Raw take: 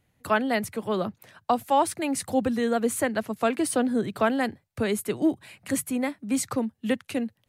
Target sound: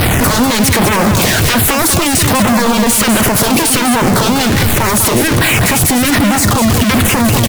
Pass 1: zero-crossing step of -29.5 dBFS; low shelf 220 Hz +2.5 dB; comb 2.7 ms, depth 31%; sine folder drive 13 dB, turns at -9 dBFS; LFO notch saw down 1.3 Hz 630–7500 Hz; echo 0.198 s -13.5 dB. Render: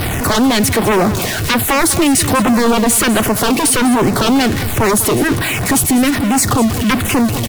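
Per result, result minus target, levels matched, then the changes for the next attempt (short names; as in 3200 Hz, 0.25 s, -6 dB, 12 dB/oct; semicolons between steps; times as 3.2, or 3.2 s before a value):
zero-crossing step: distortion -7 dB; echo-to-direct -6.5 dB
change: zero-crossing step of -19.5 dBFS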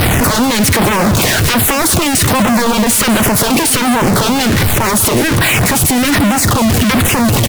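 echo-to-direct -6.5 dB
change: echo 0.198 s -7 dB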